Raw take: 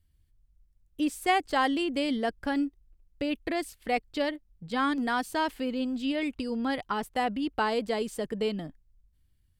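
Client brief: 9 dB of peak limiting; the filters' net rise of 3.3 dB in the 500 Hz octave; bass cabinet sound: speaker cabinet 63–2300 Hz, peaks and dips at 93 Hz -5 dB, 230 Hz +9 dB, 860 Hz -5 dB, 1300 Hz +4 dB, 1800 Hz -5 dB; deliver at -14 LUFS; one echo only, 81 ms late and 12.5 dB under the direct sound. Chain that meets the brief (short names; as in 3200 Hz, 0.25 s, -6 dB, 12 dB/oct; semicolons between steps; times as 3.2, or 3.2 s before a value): bell 500 Hz +4 dB; limiter -20 dBFS; speaker cabinet 63–2300 Hz, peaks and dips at 93 Hz -5 dB, 230 Hz +9 dB, 860 Hz -5 dB, 1300 Hz +4 dB, 1800 Hz -5 dB; echo 81 ms -12.5 dB; gain +14.5 dB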